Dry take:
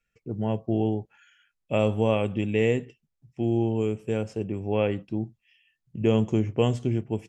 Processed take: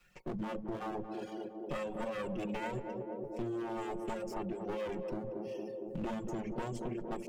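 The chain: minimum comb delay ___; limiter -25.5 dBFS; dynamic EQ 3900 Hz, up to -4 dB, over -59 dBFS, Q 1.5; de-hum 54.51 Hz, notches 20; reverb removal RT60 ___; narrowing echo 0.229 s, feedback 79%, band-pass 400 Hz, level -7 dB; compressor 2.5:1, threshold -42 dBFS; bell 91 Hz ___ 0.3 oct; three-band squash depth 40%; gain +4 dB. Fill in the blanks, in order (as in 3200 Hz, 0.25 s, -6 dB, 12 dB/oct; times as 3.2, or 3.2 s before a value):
5.5 ms, 0.84 s, -9 dB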